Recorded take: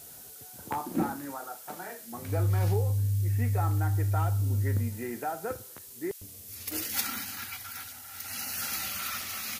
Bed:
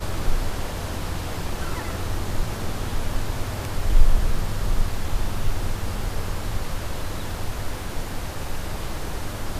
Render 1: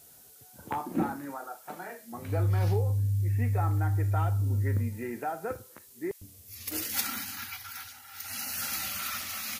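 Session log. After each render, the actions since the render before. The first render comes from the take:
noise reduction from a noise print 7 dB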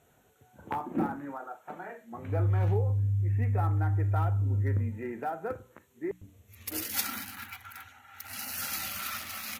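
adaptive Wiener filter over 9 samples
mains-hum notches 60/120/180/240/300 Hz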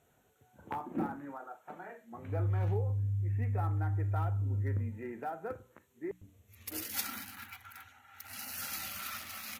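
level −5 dB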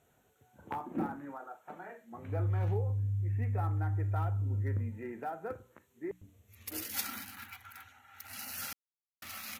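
0:08.73–0:09.22: silence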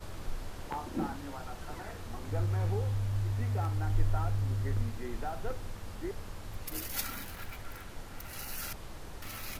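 mix in bed −15.5 dB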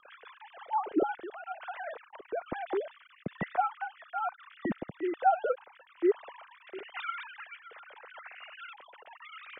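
three sine waves on the formant tracks
rotating-speaker cabinet horn 6.3 Hz, later 1.1 Hz, at 0:00.43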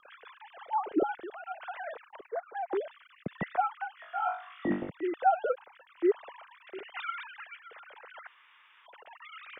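0:02.28–0:02.73: three sine waves on the formant tracks
0:03.95–0:04.90: flutter between parallel walls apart 3.5 metres, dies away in 0.41 s
0:08.27–0:08.86: fill with room tone

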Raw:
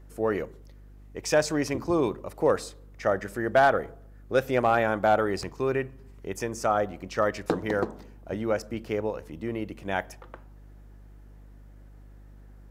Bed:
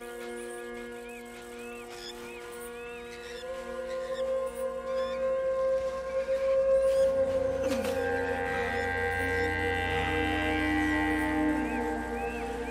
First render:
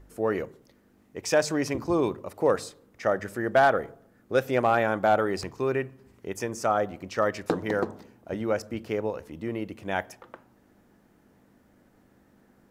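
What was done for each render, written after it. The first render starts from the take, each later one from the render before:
hum removal 50 Hz, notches 3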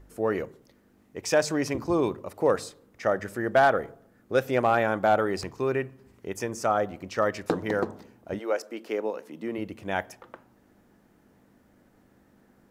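0:08.38–0:09.57: high-pass filter 380 Hz → 160 Hz 24 dB per octave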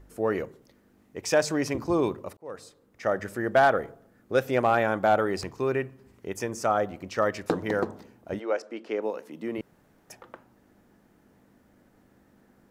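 0:02.37–0:03.21: fade in
0:08.40–0:09.02: high-frequency loss of the air 83 metres
0:09.61–0:10.10: fill with room tone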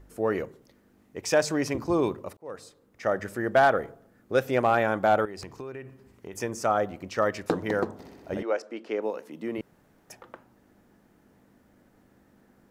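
0:05.25–0:06.33: downward compressor 8 to 1, threshold −35 dBFS
0:07.93–0:08.43: flutter between parallel walls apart 10.8 metres, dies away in 1.4 s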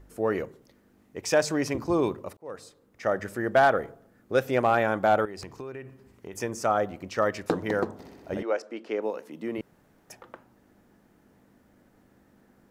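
no processing that can be heard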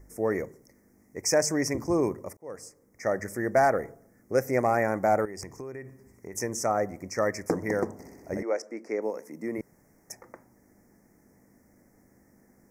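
elliptic band-stop filter 1,900–5,500 Hz, stop band 80 dB
high shelf with overshoot 1,900 Hz +6.5 dB, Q 3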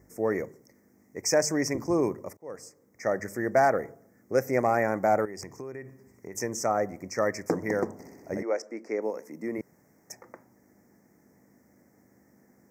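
high-pass filter 97 Hz
parametric band 10,000 Hz −11.5 dB 0.25 octaves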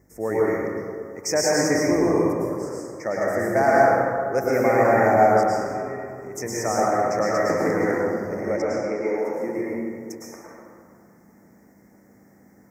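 dense smooth reverb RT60 2.2 s, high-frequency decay 0.4×, pre-delay 95 ms, DRR −6.5 dB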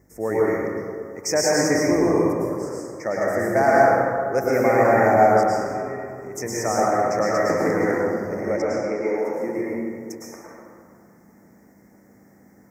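level +1 dB

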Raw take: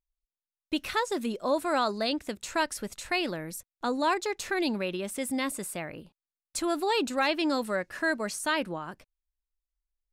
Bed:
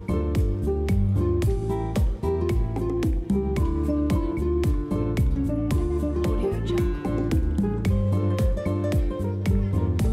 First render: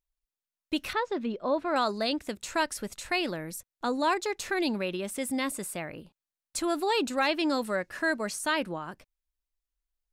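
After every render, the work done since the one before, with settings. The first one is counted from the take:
0:00.93–0:01.76: high-frequency loss of the air 240 metres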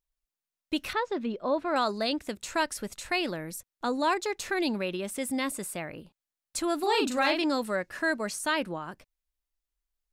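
0:06.79–0:07.44: double-tracking delay 40 ms −4 dB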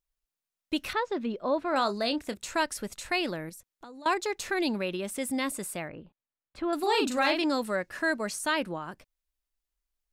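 0:01.69–0:02.34: double-tracking delay 30 ms −13 dB
0:03.49–0:04.06: downward compressor 12 to 1, threshold −43 dBFS
0:05.88–0:06.73: high-frequency loss of the air 420 metres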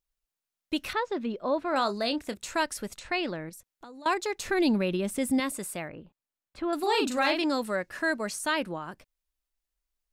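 0:02.99–0:03.53: high-frequency loss of the air 100 metres
0:04.45–0:05.40: low-shelf EQ 290 Hz +10.5 dB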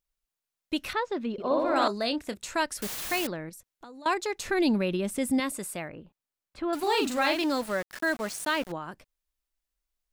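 0:01.32–0:01.88: flutter between parallel walls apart 10.5 metres, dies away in 1.3 s
0:02.82–0:03.27: bit-depth reduction 6 bits, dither triangular
0:06.73–0:08.72: centre clipping without the shift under −37 dBFS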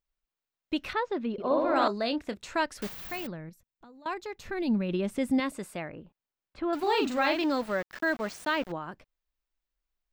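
0:02.88–0:04.89: gain on a spectral selection 240–11,000 Hz −7 dB
parametric band 11,000 Hz −14.5 dB 1.4 octaves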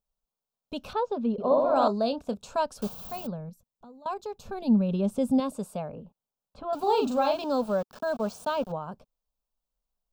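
phaser with its sweep stopped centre 810 Hz, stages 4
hollow resonant body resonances 240/380 Hz, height 12 dB, ringing for 20 ms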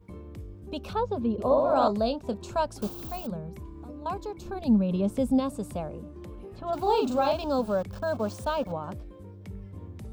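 mix in bed −18.5 dB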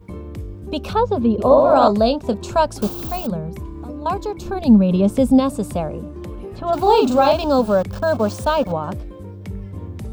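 level +10.5 dB
brickwall limiter −2 dBFS, peak gain reduction 2 dB

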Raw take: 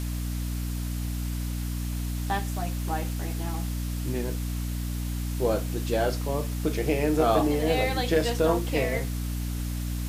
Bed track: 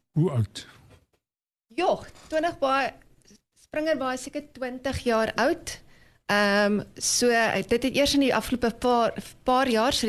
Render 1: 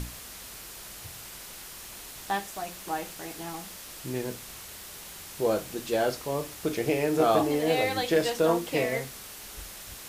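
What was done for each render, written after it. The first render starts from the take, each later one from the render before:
mains-hum notches 60/120/180/240/300 Hz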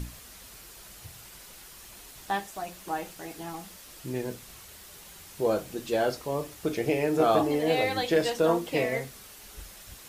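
broadband denoise 6 dB, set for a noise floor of −44 dBFS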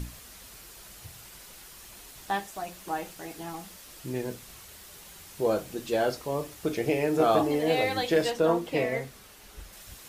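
0:08.31–0:09.73: high-shelf EQ 4,000 Hz −6 dB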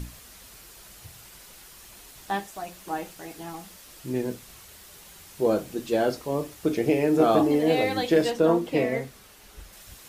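dynamic equaliser 260 Hz, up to +7 dB, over −39 dBFS, Q 0.94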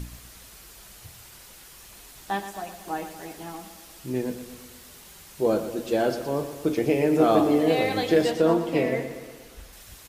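repeating echo 118 ms, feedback 58%, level −11 dB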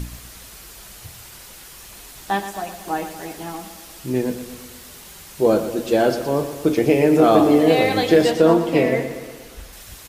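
level +6.5 dB
brickwall limiter −3 dBFS, peak gain reduction 2.5 dB

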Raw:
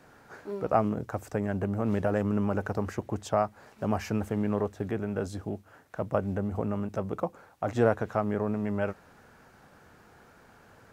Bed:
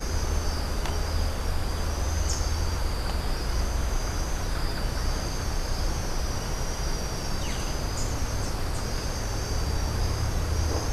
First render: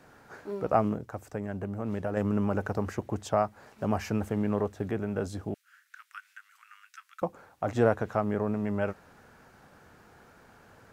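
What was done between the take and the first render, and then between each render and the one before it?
0:00.97–0:02.17: clip gain −5 dB
0:05.54–0:07.22: Butterworth high-pass 1,400 Hz 48 dB per octave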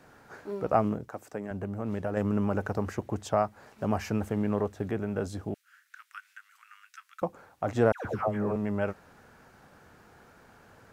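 0:01.08–0:01.51: high-pass filter 190 Hz
0:07.92–0:08.56: all-pass dispersion lows, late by 130 ms, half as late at 900 Hz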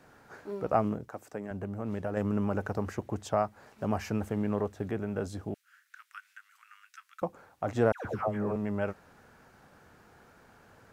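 level −2 dB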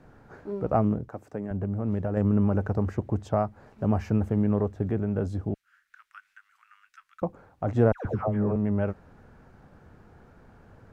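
spectral tilt −3 dB per octave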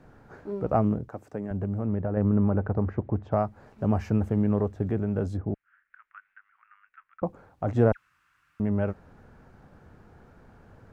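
0:01.86–0:03.32: low-pass filter 2,000 Hz
0:05.37–0:07.26: low-pass filter 2,200 Hz 24 dB per octave
0:07.97–0:08.60: fill with room tone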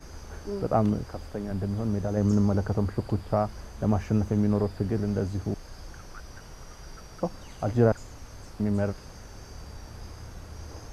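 mix in bed −15.5 dB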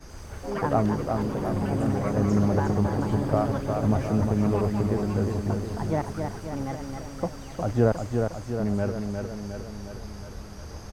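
repeating echo 358 ms, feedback 60%, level −5 dB
delay with pitch and tempo change per echo 83 ms, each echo +5 semitones, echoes 3, each echo −6 dB

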